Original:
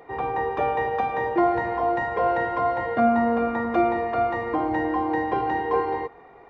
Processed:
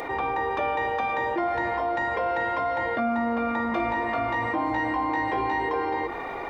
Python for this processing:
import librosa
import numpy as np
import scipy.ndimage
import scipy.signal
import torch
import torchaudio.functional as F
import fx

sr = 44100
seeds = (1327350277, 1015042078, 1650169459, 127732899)

y = fx.high_shelf(x, sr, hz=2000.0, db=9.5)
y = fx.hum_notches(y, sr, base_hz=50, count=7)
y = y + 0.37 * np.pad(y, (int(3.4 * sr / 1000.0), 0))[:len(y)]
y = fx.room_flutter(y, sr, wall_m=3.1, rt60_s=0.36, at=(3.7, 5.69))
y = fx.env_flatten(y, sr, amount_pct=70)
y = y * 10.0 ** (-7.5 / 20.0)